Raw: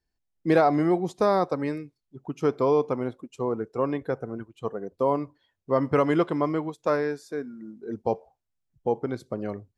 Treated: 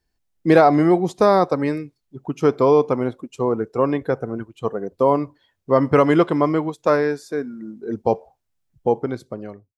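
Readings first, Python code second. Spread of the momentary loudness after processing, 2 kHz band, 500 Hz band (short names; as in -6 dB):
15 LU, +7.0 dB, +7.0 dB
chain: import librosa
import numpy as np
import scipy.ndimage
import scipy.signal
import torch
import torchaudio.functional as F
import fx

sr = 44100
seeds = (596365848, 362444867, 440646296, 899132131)

y = fx.fade_out_tail(x, sr, length_s=0.9)
y = F.gain(torch.from_numpy(y), 7.0).numpy()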